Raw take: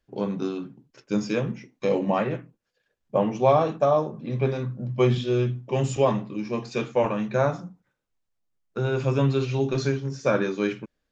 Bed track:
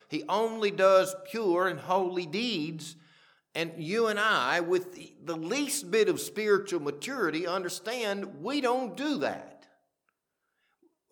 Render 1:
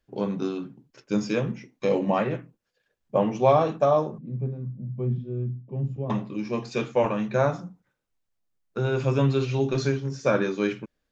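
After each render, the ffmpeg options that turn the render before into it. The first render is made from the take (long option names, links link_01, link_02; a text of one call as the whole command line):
ffmpeg -i in.wav -filter_complex "[0:a]asettb=1/sr,asplit=3[link_01][link_02][link_03];[link_01]atrim=end=4.184[link_04];[link_02]atrim=start=4.18:end=6.1,asetpts=PTS-STARTPTS,afade=type=in:duration=0.004:curve=qsin,afade=type=out:start_time=1.916:duration=0.004:curve=qsin,bandpass=frequency=160:width_type=q:width=1.9[link_05];[link_03]atrim=start=6.096[link_06];[link_04][link_05]acrossfade=duration=0.004:curve1=hsin:curve2=qsin[link_07];[link_07][link_06]acrossfade=duration=0.004:curve1=qsin:curve2=hsin" out.wav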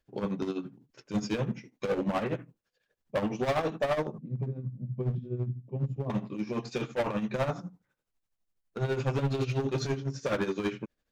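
ffmpeg -i in.wav -af "asoftclip=type=hard:threshold=-23dB,tremolo=f=12:d=0.69" out.wav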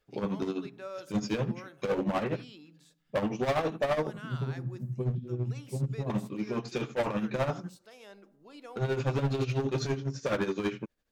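ffmpeg -i in.wav -i bed.wav -filter_complex "[1:a]volume=-20dB[link_01];[0:a][link_01]amix=inputs=2:normalize=0" out.wav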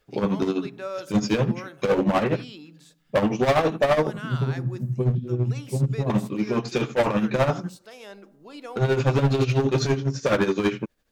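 ffmpeg -i in.wav -af "volume=8.5dB" out.wav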